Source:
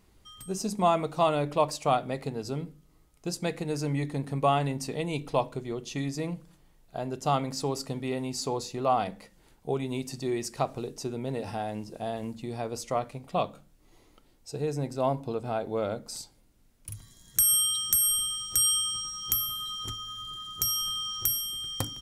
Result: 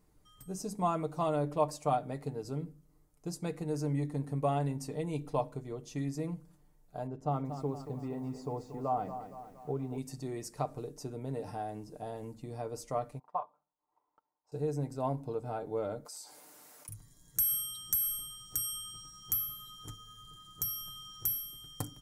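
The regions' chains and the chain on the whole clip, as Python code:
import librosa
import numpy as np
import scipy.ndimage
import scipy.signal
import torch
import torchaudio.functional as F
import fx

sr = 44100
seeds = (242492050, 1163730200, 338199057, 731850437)

y = fx.chain(x, sr, fx.lowpass(hz=1000.0, slope=6),
    fx.echo_crushed(ms=233, feedback_pct=55, bits=9, wet_db=-10.0), at=(7.07, 9.98))
y = fx.chain(y, sr, fx.bandpass_q(hz=960.0, q=6.0),
    fx.transient(attack_db=12, sustain_db=-1), at=(13.19, 14.52))
y = fx.chain(y, sr, fx.highpass(hz=690.0, slope=12),
    fx.env_flatten(amount_pct=70), at=(16.05, 16.89))
y = fx.peak_eq(y, sr, hz=3100.0, db=-10.0, octaves=1.5)
y = y + 0.49 * np.pad(y, (int(6.7 * sr / 1000.0), 0))[:len(y)]
y = F.gain(torch.from_numpy(y), -6.0).numpy()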